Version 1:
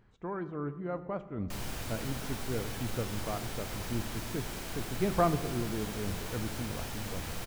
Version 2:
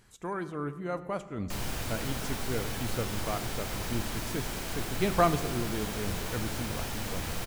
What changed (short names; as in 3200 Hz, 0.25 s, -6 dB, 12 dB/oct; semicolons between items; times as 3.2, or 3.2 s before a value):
speech: remove tape spacing loss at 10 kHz 38 dB; background +4.0 dB